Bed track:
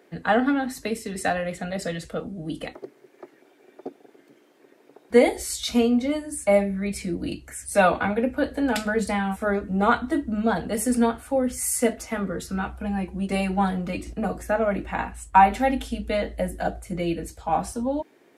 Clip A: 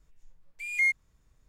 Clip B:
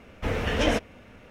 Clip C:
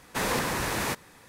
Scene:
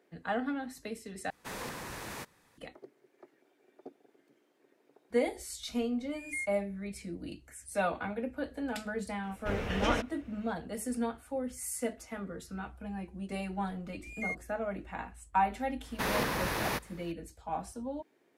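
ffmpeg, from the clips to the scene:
ffmpeg -i bed.wav -i cue0.wav -i cue1.wav -i cue2.wav -filter_complex "[3:a]asplit=2[link_01][link_02];[1:a]asplit=2[link_03][link_04];[0:a]volume=-12.5dB[link_05];[link_02]equalizer=frequency=7800:width=2.3:gain=-9.5[link_06];[link_05]asplit=2[link_07][link_08];[link_07]atrim=end=1.304[link_09];[link_01]atrim=end=1.28,asetpts=PTS-STARTPTS,volume=-13dB[link_10];[link_08]atrim=start=2.576[link_11];[link_03]atrim=end=1.48,asetpts=PTS-STARTPTS,volume=-13dB,afade=type=in:duration=0.004:curve=hsin,afade=type=out:start_time=1.476:duration=0.004:curve=hsin,adelay=5540[link_12];[2:a]atrim=end=1.3,asetpts=PTS-STARTPTS,volume=-7.5dB,afade=type=in:duration=0.004:curve=hsin,afade=type=out:start_time=1.296:duration=0.004:curve=hsin,adelay=9230[link_13];[link_04]atrim=end=1.48,asetpts=PTS-STARTPTS,volume=-12.5dB,afade=type=in:duration=0.004:curve=hsin,afade=type=out:start_time=1.476:duration=0.004:curve=hsin,adelay=13430[link_14];[link_06]atrim=end=1.28,asetpts=PTS-STARTPTS,volume=-3.5dB,afade=type=in:duration=0.004:curve=hsin,afade=type=out:start_time=1.276:duration=0.004:curve=hsin,adelay=15840[link_15];[link_09][link_10]acrossfade=duration=0.004:curve1=hsin:curve2=hsin[link_16];[link_16][link_11]acrossfade=duration=0.004:curve1=hsin:curve2=hsin[link_17];[link_17][link_12][link_13][link_14][link_15]amix=inputs=5:normalize=0" out.wav

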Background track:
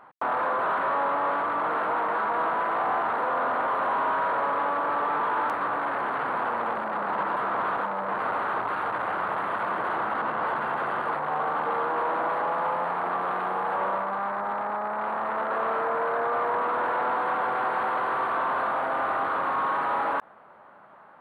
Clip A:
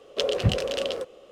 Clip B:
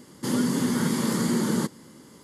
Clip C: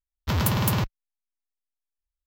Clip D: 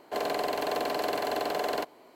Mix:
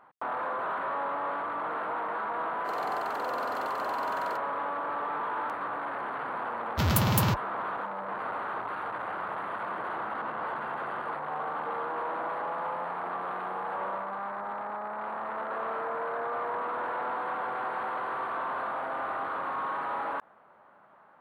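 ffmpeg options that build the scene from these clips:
ffmpeg -i bed.wav -i cue0.wav -i cue1.wav -i cue2.wav -i cue3.wav -filter_complex "[0:a]volume=-6.5dB[link_01];[3:a]highpass=52[link_02];[4:a]atrim=end=2.15,asetpts=PTS-STARTPTS,volume=-11dB,afade=type=in:duration=0.004:curve=hsin,afade=type=out:start_time=2.146:duration=0.004:curve=hsin,adelay=2530[link_03];[link_02]atrim=end=2.26,asetpts=PTS-STARTPTS,volume=-1.5dB,afade=type=in:duration=0.004:curve=hsin,afade=type=out:start_time=2.256:duration=0.004:curve=hsin,adelay=286650S[link_04];[link_01][link_03][link_04]amix=inputs=3:normalize=0" out.wav

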